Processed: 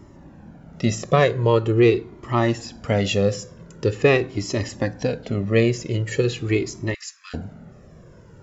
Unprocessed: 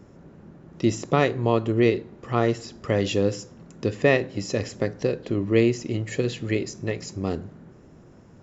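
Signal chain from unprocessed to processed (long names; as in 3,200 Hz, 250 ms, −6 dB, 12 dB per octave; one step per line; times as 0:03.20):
0:06.94–0:07.34: Butterworth high-pass 1,200 Hz 72 dB per octave
flanger whose copies keep moving one way falling 0.44 Hz
level +8 dB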